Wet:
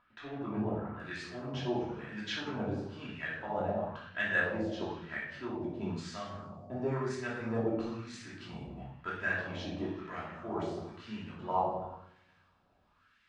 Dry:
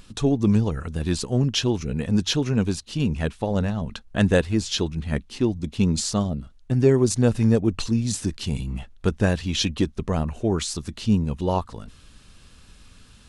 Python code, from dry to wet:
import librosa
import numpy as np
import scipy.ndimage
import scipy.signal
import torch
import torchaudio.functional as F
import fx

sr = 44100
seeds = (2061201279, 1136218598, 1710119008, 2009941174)

y = fx.law_mismatch(x, sr, coded='A')
y = fx.low_shelf(y, sr, hz=120.0, db=6.0)
y = fx.echo_feedback(y, sr, ms=186, feedback_pct=57, wet_db=-24.0)
y = fx.room_shoebox(y, sr, seeds[0], volume_m3=420.0, walls='mixed', distance_m=2.9)
y = fx.wah_lfo(y, sr, hz=1.0, low_hz=690.0, high_hz=1900.0, q=2.6)
y = fx.lowpass(y, sr, hz=fx.steps((0.0, 2900.0), (1.0, 7700.0)), slope=12)
y = y * librosa.db_to_amplitude(-6.0)